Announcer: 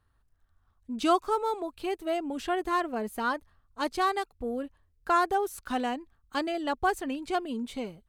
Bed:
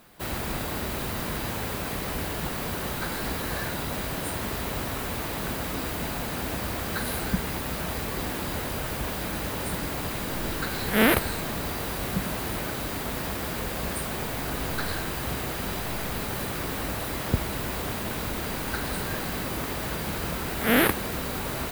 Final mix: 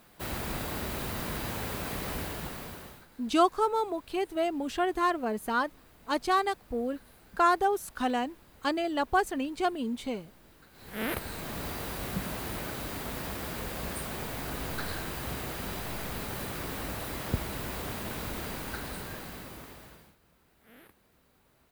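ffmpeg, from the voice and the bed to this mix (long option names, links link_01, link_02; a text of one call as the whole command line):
ffmpeg -i stem1.wav -i stem2.wav -filter_complex "[0:a]adelay=2300,volume=1dB[link_01];[1:a]volume=18dB,afade=type=out:start_time=2.13:duration=0.93:silence=0.0668344,afade=type=in:start_time=10.73:duration=0.9:silence=0.0794328,afade=type=out:start_time=18.4:duration=1.76:silence=0.0316228[link_02];[link_01][link_02]amix=inputs=2:normalize=0" out.wav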